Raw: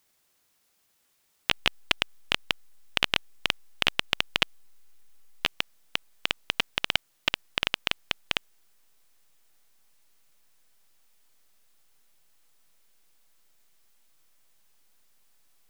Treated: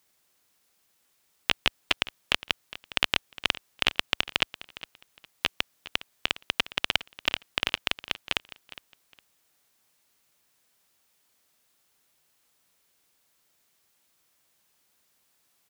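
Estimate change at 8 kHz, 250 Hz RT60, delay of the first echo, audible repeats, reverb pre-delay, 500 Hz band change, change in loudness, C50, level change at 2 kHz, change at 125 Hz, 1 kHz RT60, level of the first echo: 0.0 dB, no reverb audible, 410 ms, 2, no reverb audible, 0.0 dB, 0.0 dB, no reverb audible, 0.0 dB, −0.5 dB, no reverb audible, −17.0 dB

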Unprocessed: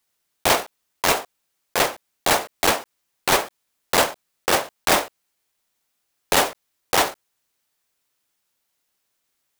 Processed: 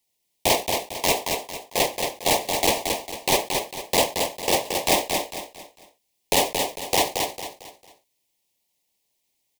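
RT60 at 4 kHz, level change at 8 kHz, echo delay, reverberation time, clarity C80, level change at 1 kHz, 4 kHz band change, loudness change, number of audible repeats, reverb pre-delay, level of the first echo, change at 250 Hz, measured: no reverb audible, +0.5 dB, 225 ms, no reverb audible, no reverb audible, −2.0 dB, +0.5 dB, −1.5 dB, 4, no reverb audible, −5.0 dB, +0.5 dB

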